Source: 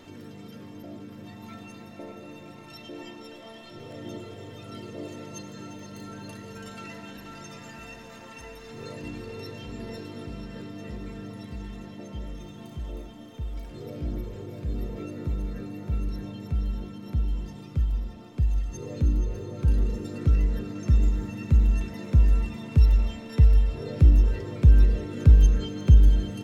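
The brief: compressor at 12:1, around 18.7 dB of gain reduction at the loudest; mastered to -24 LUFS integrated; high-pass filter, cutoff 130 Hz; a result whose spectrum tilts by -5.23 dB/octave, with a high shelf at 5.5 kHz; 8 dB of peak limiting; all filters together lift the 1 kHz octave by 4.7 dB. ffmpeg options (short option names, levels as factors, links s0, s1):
-af "highpass=130,equalizer=f=1000:t=o:g=6,highshelf=f=5500:g=6,acompressor=threshold=0.0141:ratio=12,volume=10.6,alimiter=limit=0.178:level=0:latency=1"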